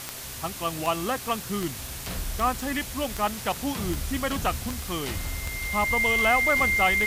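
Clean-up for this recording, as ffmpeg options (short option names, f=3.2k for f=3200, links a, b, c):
-af "adeclick=t=4,bandreject=f=131.8:t=h:w=4,bandreject=f=263.6:t=h:w=4,bandreject=f=395.4:t=h:w=4,bandreject=f=527.2:t=h:w=4,bandreject=f=659:t=h:w=4,bandreject=f=2.1k:w=30,afwtdn=0.014"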